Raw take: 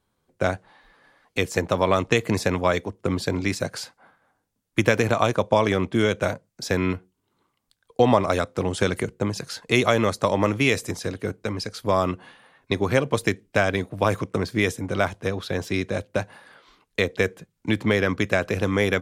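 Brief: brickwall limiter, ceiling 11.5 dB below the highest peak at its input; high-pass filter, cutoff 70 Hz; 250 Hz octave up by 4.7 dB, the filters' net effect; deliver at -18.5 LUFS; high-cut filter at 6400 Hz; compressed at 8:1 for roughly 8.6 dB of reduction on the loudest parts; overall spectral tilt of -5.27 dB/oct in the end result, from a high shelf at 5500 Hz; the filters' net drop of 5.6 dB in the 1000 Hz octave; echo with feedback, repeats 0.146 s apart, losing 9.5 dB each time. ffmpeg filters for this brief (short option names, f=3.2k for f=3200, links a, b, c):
-af "highpass=70,lowpass=6.4k,equalizer=f=250:t=o:g=6.5,equalizer=f=1k:t=o:g=-8,highshelf=f=5.5k:g=3,acompressor=threshold=-21dB:ratio=8,alimiter=limit=-20.5dB:level=0:latency=1,aecho=1:1:146|292|438|584:0.335|0.111|0.0365|0.012,volume=13dB"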